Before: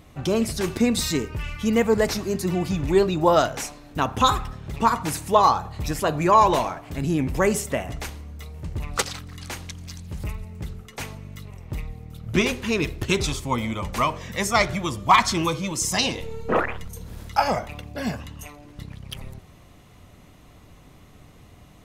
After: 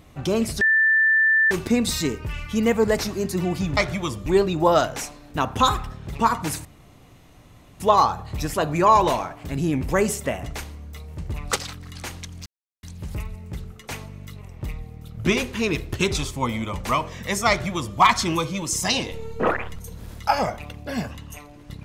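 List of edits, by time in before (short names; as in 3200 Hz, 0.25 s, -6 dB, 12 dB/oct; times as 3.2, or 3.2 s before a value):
0.61 add tone 1770 Hz -14.5 dBFS 0.90 s
5.26 insert room tone 1.15 s
9.92 insert silence 0.37 s
14.58–15.07 copy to 2.87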